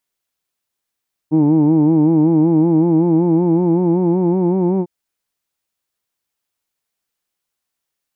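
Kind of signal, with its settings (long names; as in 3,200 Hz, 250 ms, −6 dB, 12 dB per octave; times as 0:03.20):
vowel from formants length 3.55 s, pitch 151 Hz, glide +3.5 semitones, F1 310 Hz, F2 880 Hz, F3 2,300 Hz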